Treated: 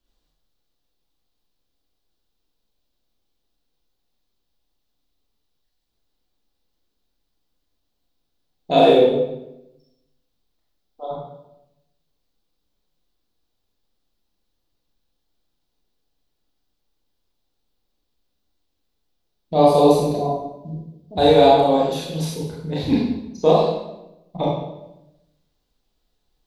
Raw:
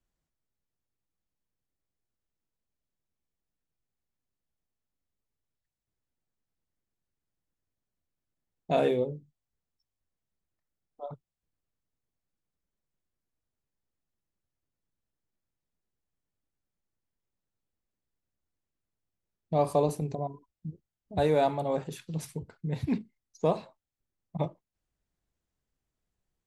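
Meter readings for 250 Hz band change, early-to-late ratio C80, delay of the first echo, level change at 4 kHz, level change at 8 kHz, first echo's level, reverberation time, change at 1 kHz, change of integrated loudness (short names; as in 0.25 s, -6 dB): +13.0 dB, 4.0 dB, none, +19.0 dB, n/a, none, 0.90 s, +14.0 dB, +12.5 dB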